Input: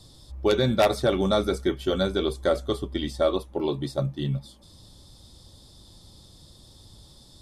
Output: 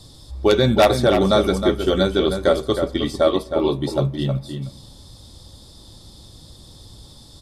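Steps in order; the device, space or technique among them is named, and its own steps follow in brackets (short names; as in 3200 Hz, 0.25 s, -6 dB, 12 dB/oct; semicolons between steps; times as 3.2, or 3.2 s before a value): outdoor echo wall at 54 m, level -7 dB; compressed reverb return (on a send at -14 dB: reverb RT60 0.85 s, pre-delay 3 ms + compressor, threshold -28 dBFS, peak gain reduction 11.5 dB); on the sum: gain +6 dB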